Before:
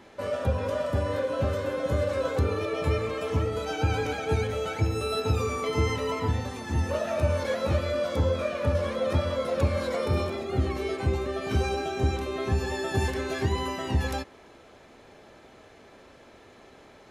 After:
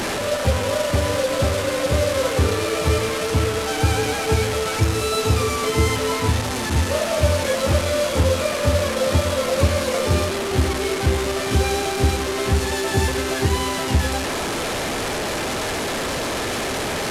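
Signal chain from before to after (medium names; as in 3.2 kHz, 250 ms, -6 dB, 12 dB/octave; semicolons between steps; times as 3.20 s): one-bit delta coder 64 kbps, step -25 dBFS; trim +6.5 dB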